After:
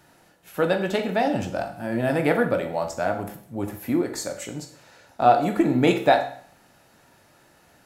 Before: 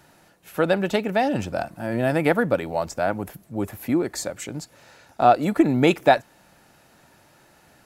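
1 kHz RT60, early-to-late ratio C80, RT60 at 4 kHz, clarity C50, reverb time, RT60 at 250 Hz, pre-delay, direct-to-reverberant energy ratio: 0.55 s, 13.0 dB, 0.50 s, 9.5 dB, 0.55 s, 0.55 s, 16 ms, 4.5 dB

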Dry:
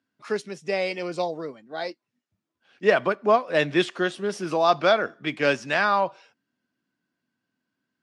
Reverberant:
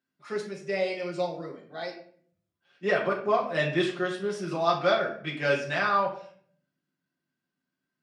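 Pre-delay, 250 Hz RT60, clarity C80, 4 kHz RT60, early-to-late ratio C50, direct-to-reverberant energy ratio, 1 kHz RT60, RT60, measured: 5 ms, 0.85 s, 11.5 dB, 0.40 s, 7.5 dB, −3.0 dB, 0.50 s, 0.55 s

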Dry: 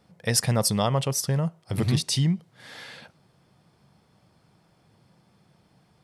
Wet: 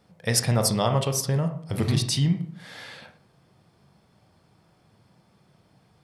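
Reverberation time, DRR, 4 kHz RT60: 0.55 s, 6.0 dB, 0.40 s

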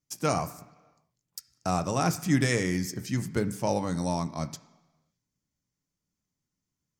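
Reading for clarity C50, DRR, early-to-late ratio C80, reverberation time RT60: 14.5 dB, 8.0 dB, 17.0 dB, 1.3 s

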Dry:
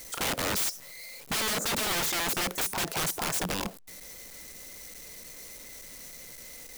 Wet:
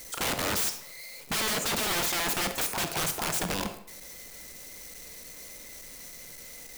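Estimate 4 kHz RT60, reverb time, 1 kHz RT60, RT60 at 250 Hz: 0.50 s, 0.70 s, 0.70 s, 0.65 s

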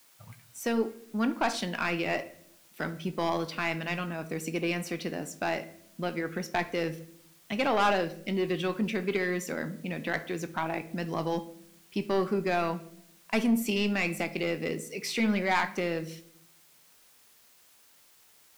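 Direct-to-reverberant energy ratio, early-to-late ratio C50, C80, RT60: 9.5 dB, 14.5 dB, 18.5 dB, non-exponential decay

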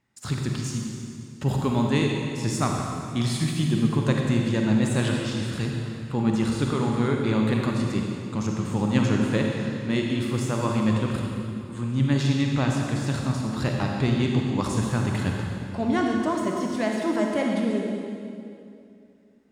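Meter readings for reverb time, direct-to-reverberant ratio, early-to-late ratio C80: 2.5 s, 0.5 dB, 2.0 dB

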